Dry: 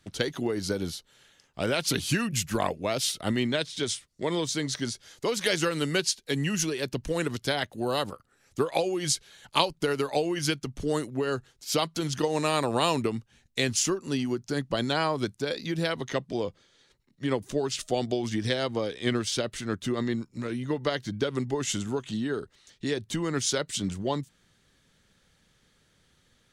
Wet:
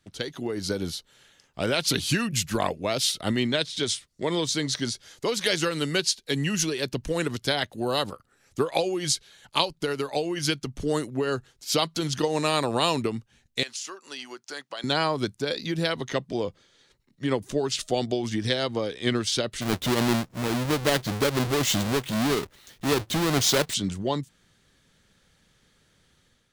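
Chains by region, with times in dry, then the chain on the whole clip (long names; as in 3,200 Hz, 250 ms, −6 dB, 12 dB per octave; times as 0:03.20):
0:13.63–0:14.84: high-pass filter 780 Hz + parametric band 13,000 Hz −6.5 dB 0.59 octaves + downward compressor, threshold −32 dBFS
0:19.61–0:23.74: each half-wave held at its own peak + transient designer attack −4 dB, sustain +1 dB
whole clip: dynamic equaliser 4,000 Hz, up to +4 dB, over −42 dBFS, Q 1.8; automatic gain control gain up to 7 dB; level −5 dB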